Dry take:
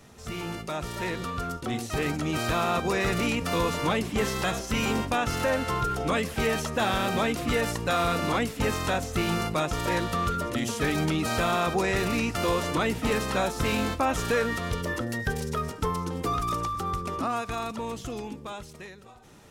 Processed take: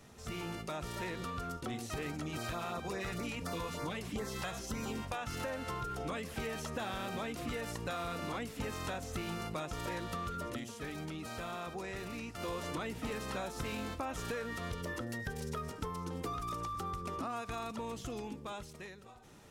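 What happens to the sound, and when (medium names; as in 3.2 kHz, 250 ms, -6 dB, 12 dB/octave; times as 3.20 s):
2.23–5.38 s: LFO notch sine 6.8 Hz -> 1.1 Hz 250–3100 Hz
10.47–12.58 s: dip -10.5 dB, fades 0.20 s
whole clip: compression, threshold -31 dBFS; trim -5 dB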